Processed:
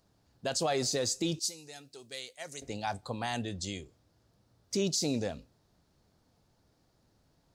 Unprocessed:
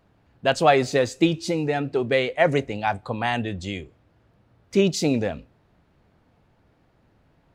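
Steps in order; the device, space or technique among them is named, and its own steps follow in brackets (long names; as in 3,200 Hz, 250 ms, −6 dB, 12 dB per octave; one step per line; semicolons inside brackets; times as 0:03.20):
0:01.39–0:02.62: first-order pre-emphasis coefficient 0.9
over-bright horn tweeter (high shelf with overshoot 3,600 Hz +12 dB, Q 1.5; brickwall limiter −12.5 dBFS, peak gain reduction 9.5 dB)
level −8.5 dB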